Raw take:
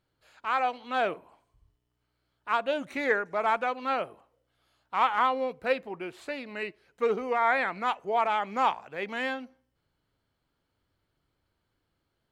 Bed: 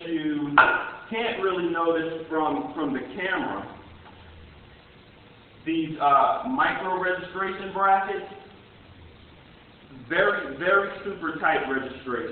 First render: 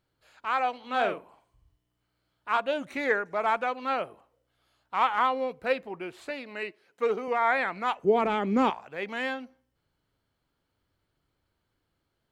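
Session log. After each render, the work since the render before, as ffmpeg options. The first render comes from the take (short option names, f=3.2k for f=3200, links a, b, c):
-filter_complex "[0:a]asettb=1/sr,asplit=3[a][b][c];[a]atrim=end=0.794[d];[b]atrim=start=0.79:end=2.6,asetpts=PTS-STARTPTS,afade=t=in:d=0.004:c=qsin,afade=t=out:st=1.806:d=0.004:c=qsin,asplit=2[e][f];[f]adelay=44,volume=-6dB[g];[e][g]amix=inputs=2:normalize=0,atrim=end_sample=79821[h];[c]atrim=start=2.596[i];[d][h]acrossfade=d=0.004:c1=hsin:c2=qsin[j];[j][i]acrossfade=d=0.004:c1=qsin:c2=hsin,asettb=1/sr,asplit=3[k][l][m];[k]atrim=end=6.304[n];[l]atrim=start=6.3:end=7.28,asetpts=PTS-STARTPTS,afade=t=in:d=0.004:c=qsin,afade=t=out:st=0.976:d=0.004:c=qsin,highpass=220[o];[m]atrim=start=7.276[p];[n][o]acrossfade=d=0.004:c1=hsin:c2=qsin[q];[q][p]acrossfade=d=0.004:c1=qsin:c2=hsin,asettb=1/sr,asplit=3[r][s][t];[r]atrim=end=8.034[u];[s]atrim=start=8.03:end=8.7,asetpts=PTS-STARTPTS,afade=t=in:d=0.004:c=qsin,afade=t=out:st=0.666:d=0.004:c=qsin,lowshelf=f=510:t=q:w=1.5:g=12.5[v];[t]atrim=start=8.696[w];[u][v]acrossfade=d=0.004:c1=hsin:c2=qsin[x];[x][w]acrossfade=d=0.004:c1=qsin:c2=hsin"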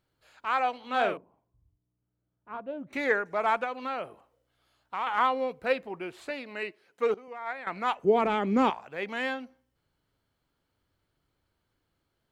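-filter_complex "[0:a]asettb=1/sr,asplit=3[a][b][c];[a]atrim=end=1.174[d];[b]atrim=start=1.17:end=2.93,asetpts=PTS-STARTPTS,afade=t=in:d=0.004:c=qsin,afade=t=out:st=1.756:d=0.004:c=qsin,bandpass=f=140:t=q:w=0.63[e];[c]atrim=start=2.926[f];[d][e]acrossfade=d=0.004:c1=hsin:c2=qsin[g];[g][f]acrossfade=d=0.004:c1=qsin:c2=hsin,asettb=1/sr,asplit=3[h][i][j];[h]atrim=end=3.644[k];[i]atrim=start=3.64:end=5.07,asetpts=PTS-STARTPTS,afade=t=in:d=0.004:c=qsin,afade=t=out:st=1.426:d=0.004:c=qsin,acompressor=threshold=-30dB:ratio=2.5:attack=3.2:release=140:knee=1:detection=peak[l];[j]atrim=start=5.066[m];[k][l]acrossfade=d=0.004:c1=hsin:c2=qsin[n];[n][m]acrossfade=d=0.004:c1=qsin:c2=hsin,asettb=1/sr,asplit=3[o][p][q];[o]atrim=end=7.144[r];[p]atrim=start=7.14:end=7.67,asetpts=PTS-STARTPTS,afade=t=in:d=0.004:c=qsin,afade=t=out:st=0.526:d=0.004:c=qsin,agate=range=-14dB:threshold=-22dB:ratio=16:release=100:detection=peak[s];[q]atrim=start=7.666[t];[r][s]acrossfade=d=0.004:c1=hsin:c2=qsin[u];[u][t]acrossfade=d=0.004:c1=qsin:c2=hsin"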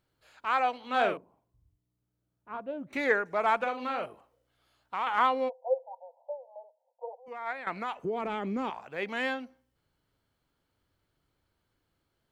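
-filter_complex "[0:a]asettb=1/sr,asplit=3[a][b][c];[a]atrim=end=3.564[d];[b]atrim=start=3.56:end=4.06,asetpts=PTS-STARTPTS,afade=t=in:d=0.004:c=qsin,afade=t=out:st=0.496:d=0.004:c=qsin,asplit=2[e][f];[f]adelay=44,volume=-6dB[g];[e][g]amix=inputs=2:normalize=0,atrim=end_sample=22050[h];[c]atrim=start=4.056[i];[d][h]acrossfade=d=0.004:c1=hsin:c2=qsin[j];[j][i]acrossfade=d=0.004:c1=qsin:c2=hsin,asplit=3[k][l][m];[k]afade=t=out:st=5.48:d=0.02[n];[l]asuperpass=centerf=690:order=20:qfactor=1.5,afade=t=in:st=5.48:d=0.02,afade=t=out:st=7.26:d=0.02[o];[m]afade=t=in:st=7.26:d=0.02[p];[n][o][p]amix=inputs=3:normalize=0,asettb=1/sr,asplit=3[q][r][s];[q]atrim=end=7.774[t];[r]atrim=start=7.77:end=8.84,asetpts=PTS-STARTPTS,afade=t=in:d=0.004:c=qsin,afade=t=out:st=1.066:d=0.004:c=qsin,acompressor=threshold=-30dB:ratio=4:attack=3.2:release=140:knee=1:detection=peak[u];[s]atrim=start=8.836[v];[t][u]acrossfade=d=0.004:c1=hsin:c2=qsin[w];[w][v]acrossfade=d=0.004:c1=qsin:c2=hsin"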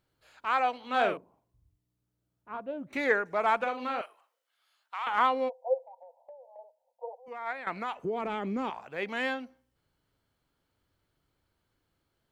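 -filter_complex "[0:a]asettb=1/sr,asplit=3[a][b][c];[a]atrim=end=4.014[d];[b]atrim=start=4.01:end=5.07,asetpts=PTS-STARTPTS,afade=t=in:d=0.004:c=qsin,afade=t=out:st=1.056:d=0.004:c=qsin,highpass=1.1k[e];[c]atrim=start=5.066[f];[d][e]acrossfade=d=0.004:c1=hsin:c2=qsin[g];[g][f]acrossfade=d=0.004:c1=qsin:c2=hsin,asettb=1/sr,asplit=3[h][i][j];[h]atrim=end=5.824[k];[i]atrim=start=5.82:end=6.59,asetpts=PTS-STARTPTS,afade=t=in:d=0.004:c=qsin,afade=t=out:st=0.766:d=0.004:c=qsin,acompressor=threshold=-46dB:ratio=6:attack=3.2:release=140:knee=1:detection=peak[l];[j]atrim=start=6.586[m];[k][l]acrossfade=d=0.004:c1=hsin:c2=qsin[n];[n][m]acrossfade=d=0.004:c1=qsin:c2=hsin"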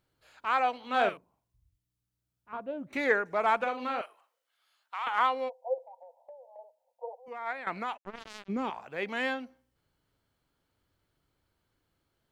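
-filter_complex "[0:a]asettb=1/sr,asplit=3[a][b][c];[a]atrim=end=1.094[d];[b]atrim=start=1.09:end=2.53,asetpts=PTS-STARTPTS,afade=t=in:d=0.004:c=qsin,afade=t=out:st=1.436:d=0.004:c=qsin,equalizer=f=410:w=0.42:g=-11[e];[c]atrim=start=2.526[f];[d][e]acrossfade=d=0.004:c1=hsin:c2=qsin[g];[g][f]acrossfade=d=0.004:c1=qsin:c2=hsin,asettb=1/sr,asplit=3[h][i][j];[h]atrim=end=5.084[k];[i]atrim=start=5.08:end=5.78,asetpts=PTS-STARTPTS,afade=t=in:d=0.004:c=qsin,afade=t=out:st=0.696:d=0.004:c=qsin,equalizer=f=91:w=0.36:g=-14.5[l];[j]atrim=start=5.776[m];[k][l]acrossfade=d=0.004:c1=hsin:c2=qsin[n];[n][m]acrossfade=d=0.004:c1=qsin:c2=hsin,asplit=3[o][p][q];[o]afade=t=out:st=7.96:d=0.02[r];[p]acrusher=bits=3:mix=0:aa=0.5,afade=t=in:st=7.96:d=0.02,afade=t=out:st=8.48:d=0.02[s];[q]afade=t=in:st=8.48:d=0.02[t];[r][s][t]amix=inputs=3:normalize=0"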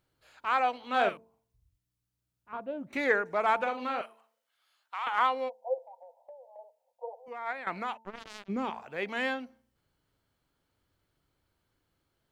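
-af "bandreject=f=224:t=h:w=4,bandreject=f=448:t=h:w=4,bandreject=f=672:t=h:w=4,bandreject=f=896:t=h:w=4"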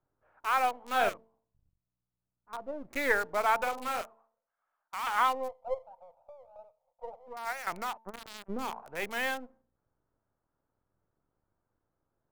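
-filter_complex "[0:a]acrossover=split=520|1400[a][b][c];[a]aeval=exprs='max(val(0),0)':c=same[d];[c]acrusher=bits=6:mix=0:aa=0.000001[e];[d][b][e]amix=inputs=3:normalize=0"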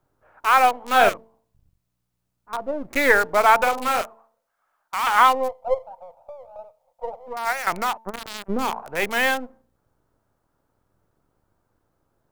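-af "volume=11.5dB,alimiter=limit=-3dB:level=0:latency=1"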